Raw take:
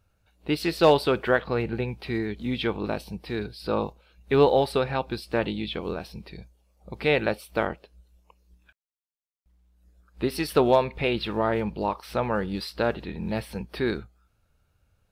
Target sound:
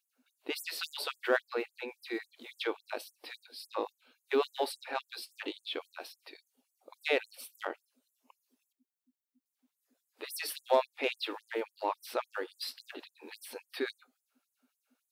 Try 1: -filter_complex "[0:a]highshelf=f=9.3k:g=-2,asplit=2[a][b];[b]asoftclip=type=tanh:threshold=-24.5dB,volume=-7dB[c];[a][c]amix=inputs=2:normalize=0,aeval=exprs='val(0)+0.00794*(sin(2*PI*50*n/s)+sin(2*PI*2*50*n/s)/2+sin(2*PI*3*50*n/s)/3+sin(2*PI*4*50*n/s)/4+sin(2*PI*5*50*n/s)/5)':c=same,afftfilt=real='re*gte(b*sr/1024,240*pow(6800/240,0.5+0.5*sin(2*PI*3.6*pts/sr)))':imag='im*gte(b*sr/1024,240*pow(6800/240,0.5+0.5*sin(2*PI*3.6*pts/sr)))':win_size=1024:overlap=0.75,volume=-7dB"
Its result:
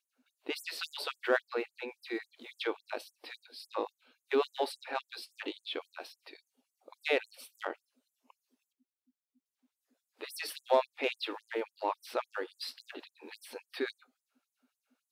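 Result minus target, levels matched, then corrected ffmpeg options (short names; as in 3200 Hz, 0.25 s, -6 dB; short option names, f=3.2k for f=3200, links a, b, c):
8000 Hz band -4.0 dB
-filter_complex "[0:a]highshelf=f=9.3k:g=7,asplit=2[a][b];[b]asoftclip=type=tanh:threshold=-24.5dB,volume=-7dB[c];[a][c]amix=inputs=2:normalize=0,aeval=exprs='val(0)+0.00794*(sin(2*PI*50*n/s)+sin(2*PI*2*50*n/s)/2+sin(2*PI*3*50*n/s)/3+sin(2*PI*4*50*n/s)/4+sin(2*PI*5*50*n/s)/5)':c=same,afftfilt=real='re*gte(b*sr/1024,240*pow(6800/240,0.5+0.5*sin(2*PI*3.6*pts/sr)))':imag='im*gte(b*sr/1024,240*pow(6800/240,0.5+0.5*sin(2*PI*3.6*pts/sr)))':win_size=1024:overlap=0.75,volume=-7dB"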